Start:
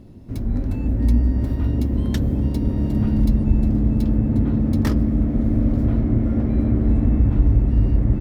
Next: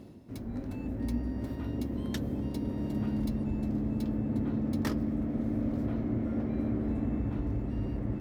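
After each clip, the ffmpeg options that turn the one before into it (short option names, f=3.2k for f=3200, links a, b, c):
-af "areverse,acompressor=mode=upward:threshold=-26dB:ratio=2.5,areverse,highpass=f=260:p=1,volume=-6.5dB"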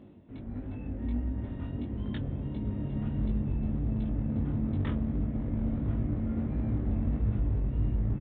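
-af "asubboost=boost=3.5:cutoff=170,aresample=8000,asoftclip=type=hard:threshold=-21.5dB,aresample=44100,flanger=delay=19:depth=3.5:speed=1.5"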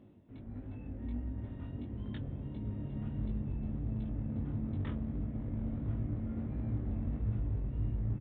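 -af "equalizer=f=110:w=5.4:g=4.5,volume=-7dB"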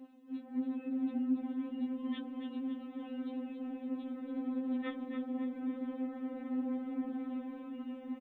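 -af "highpass=200,aecho=1:1:279|558|837|1116|1395|1674:0.422|0.207|0.101|0.0496|0.0243|0.0119,afftfilt=real='re*3.46*eq(mod(b,12),0)':imag='im*3.46*eq(mod(b,12),0)':win_size=2048:overlap=0.75,volume=8dB"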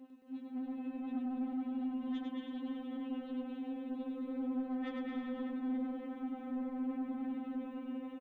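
-filter_complex "[0:a]asplit=2[a][b];[b]aecho=0:1:220|418|596.2|756.6|900.9:0.631|0.398|0.251|0.158|0.1[c];[a][c]amix=inputs=2:normalize=0,asoftclip=type=tanh:threshold=-32dB,asplit=2[d][e];[e]aecho=0:1:101:0.631[f];[d][f]amix=inputs=2:normalize=0,volume=-2.5dB"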